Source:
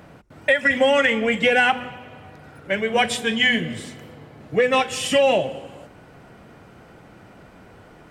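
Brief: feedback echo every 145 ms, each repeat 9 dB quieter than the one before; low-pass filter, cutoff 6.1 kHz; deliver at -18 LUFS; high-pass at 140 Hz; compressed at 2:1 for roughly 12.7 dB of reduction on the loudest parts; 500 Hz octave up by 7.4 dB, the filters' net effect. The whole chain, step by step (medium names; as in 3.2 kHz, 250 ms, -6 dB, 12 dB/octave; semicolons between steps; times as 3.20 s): high-pass 140 Hz; low-pass 6.1 kHz; peaking EQ 500 Hz +8 dB; compression 2:1, threshold -31 dBFS; feedback delay 145 ms, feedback 35%, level -9 dB; trim +8.5 dB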